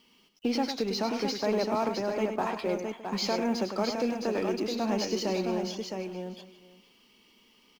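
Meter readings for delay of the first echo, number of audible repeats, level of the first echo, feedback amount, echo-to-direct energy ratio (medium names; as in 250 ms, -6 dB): 102 ms, 6, -8.0 dB, no regular repeats, -3.5 dB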